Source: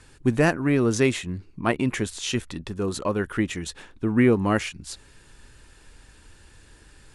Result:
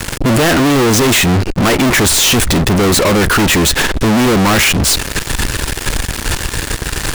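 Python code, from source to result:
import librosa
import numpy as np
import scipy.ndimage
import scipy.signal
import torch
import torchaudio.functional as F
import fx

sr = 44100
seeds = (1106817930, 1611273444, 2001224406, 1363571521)

y = fx.fuzz(x, sr, gain_db=41.0, gate_db=-49.0)
y = fx.leveller(y, sr, passes=5)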